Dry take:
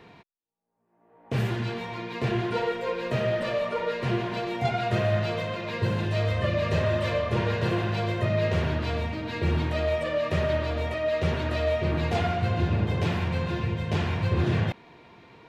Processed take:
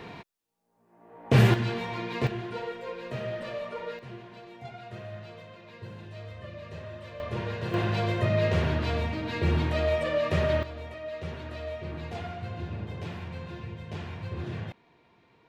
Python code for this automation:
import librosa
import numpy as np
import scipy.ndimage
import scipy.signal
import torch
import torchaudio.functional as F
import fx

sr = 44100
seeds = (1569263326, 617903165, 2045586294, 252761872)

y = fx.gain(x, sr, db=fx.steps((0.0, 8.0), (1.54, 1.0), (2.27, -8.0), (3.99, -16.5), (7.2, -7.0), (7.74, 0.0), (10.63, -11.0)))